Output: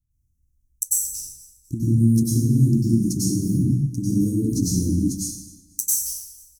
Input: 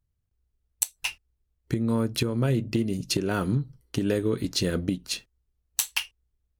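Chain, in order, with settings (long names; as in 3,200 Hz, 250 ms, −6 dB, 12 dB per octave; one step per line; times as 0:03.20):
Chebyshev band-stop filter 300–5,900 Hz, order 4
on a send: repeating echo 245 ms, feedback 35%, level −20.5 dB
on the sum: dense smooth reverb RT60 0.83 s, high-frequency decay 0.9×, pre-delay 85 ms, DRR −9 dB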